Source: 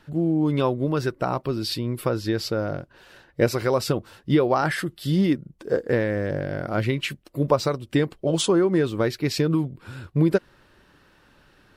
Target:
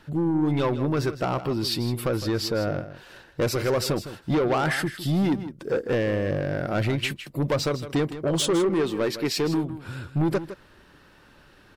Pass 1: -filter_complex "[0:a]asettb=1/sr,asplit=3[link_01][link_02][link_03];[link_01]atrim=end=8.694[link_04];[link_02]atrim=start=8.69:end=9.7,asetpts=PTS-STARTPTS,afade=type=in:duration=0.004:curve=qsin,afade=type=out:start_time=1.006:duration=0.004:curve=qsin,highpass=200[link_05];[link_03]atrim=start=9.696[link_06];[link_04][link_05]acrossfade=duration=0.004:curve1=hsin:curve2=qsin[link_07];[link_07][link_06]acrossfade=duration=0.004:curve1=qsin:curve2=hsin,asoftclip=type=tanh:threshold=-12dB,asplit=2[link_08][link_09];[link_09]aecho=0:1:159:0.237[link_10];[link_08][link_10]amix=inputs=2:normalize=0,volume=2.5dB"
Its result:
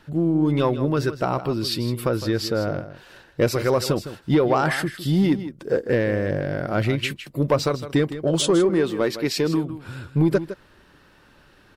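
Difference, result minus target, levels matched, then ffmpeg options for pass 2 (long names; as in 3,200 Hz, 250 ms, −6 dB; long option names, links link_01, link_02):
soft clipping: distortion −10 dB
-filter_complex "[0:a]asettb=1/sr,asplit=3[link_01][link_02][link_03];[link_01]atrim=end=8.694[link_04];[link_02]atrim=start=8.69:end=9.7,asetpts=PTS-STARTPTS,afade=type=in:duration=0.004:curve=qsin,afade=type=out:start_time=1.006:duration=0.004:curve=qsin,highpass=200[link_05];[link_03]atrim=start=9.696[link_06];[link_04][link_05]acrossfade=duration=0.004:curve1=hsin:curve2=qsin[link_07];[link_07][link_06]acrossfade=duration=0.004:curve1=qsin:curve2=hsin,asoftclip=type=tanh:threshold=-21dB,asplit=2[link_08][link_09];[link_09]aecho=0:1:159:0.237[link_10];[link_08][link_10]amix=inputs=2:normalize=0,volume=2.5dB"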